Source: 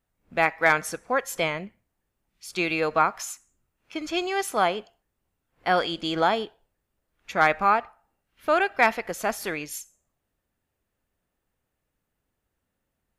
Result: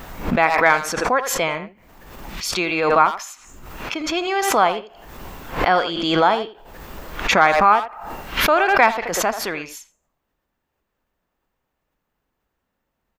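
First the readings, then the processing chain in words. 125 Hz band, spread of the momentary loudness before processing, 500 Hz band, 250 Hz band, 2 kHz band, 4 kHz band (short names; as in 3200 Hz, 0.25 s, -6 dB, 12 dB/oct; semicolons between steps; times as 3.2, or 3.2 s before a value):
+7.0 dB, 15 LU, +6.0 dB, +6.5 dB, +5.5 dB, +7.5 dB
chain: fifteen-band EQ 100 Hz -7 dB, 1000 Hz +5 dB, 10000 Hz -11 dB; speakerphone echo 80 ms, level -10 dB; backwards sustainer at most 41 dB/s; gain +3 dB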